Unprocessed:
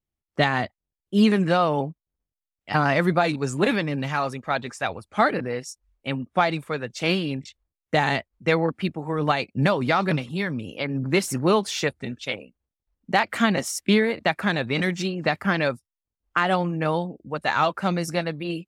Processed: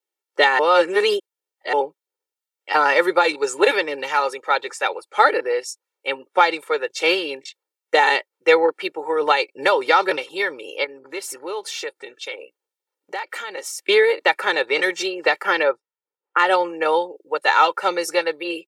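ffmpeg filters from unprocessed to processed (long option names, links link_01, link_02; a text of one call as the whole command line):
ffmpeg -i in.wav -filter_complex "[0:a]asettb=1/sr,asplit=3[link_01][link_02][link_03];[link_01]atrim=end=10.844[link_04];[link_02]atrim=start=10.84:end=13.79,asetpts=PTS-STARTPTS,afade=type=in:duration=0.004:curve=qsin,afade=type=out:start_time=2.946:duration=0.004:curve=qsin,acompressor=threshold=-36dB:ratio=2.5:attack=3.2:release=140:knee=1:detection=peak[link_05];[link_03]atrim=start=13.786[link_06];[link_04][link_05]acrossfade=duration=0.004:curve1=hsin:curve2=qsin[link_07];[link_07][link_06]acrossfade=duration=0.004:curve1=qsin:curve2=hsin,asplit=3[link_08][link_09][link_10];[link_08]afade=type=out:start_time=15.62:duration=0.02[link_11];[link_09]lowpass=1800,afade=type=in:start_time=15.62:duration=0.02,afade=type=out:start_time=16.38:duration=0.02[link_12];[link_10]afade=type=in:start_time=16.38:duration=0.02[link_13];[link_11][link_12][link_13]amix=inputs=3:normalize=0,asplit=3[link_14][link_15][link_16];[link_14]atrim=end=0.592[link_17];[link_15]atrim=start=0.588:end=1.732,asetpts=PTS-STARTPTS,areverse[link_18];[link_16]atrim=start=1.728[link_19];[link_17][link_18]acrossfade=duration=0.004:curve1=hsin:curve2=hsin[link_20];[link_20][link_19]acrossfade=duration=0.004:curve1=hsin:curve2=hsin,highpass=frequency=380:width=0.5412,highpass=frequency=380:width=1.3066,aecho=1:1:2.2:0.83,volume=4dB" out.wav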